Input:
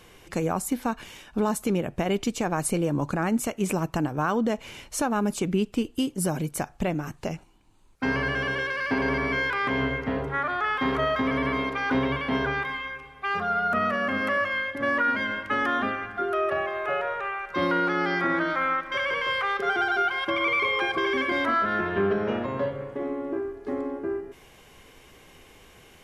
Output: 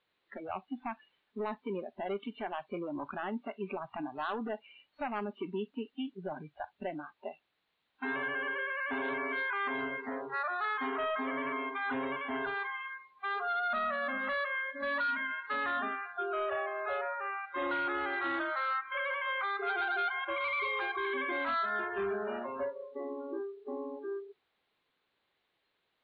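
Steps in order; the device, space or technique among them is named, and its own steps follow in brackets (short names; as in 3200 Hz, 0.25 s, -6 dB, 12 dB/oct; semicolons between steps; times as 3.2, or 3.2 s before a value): aircraft radio (BPF 300–2400 Hz; hard clip -23.5 dBFS, distortion -14 dB; white noise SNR 13 dB); elliptic low-pass 4000 Hz, stop band 40 dB; spectral noise reduction 25 dB; low shelf 82 Hz -7 dB; gain -5 dB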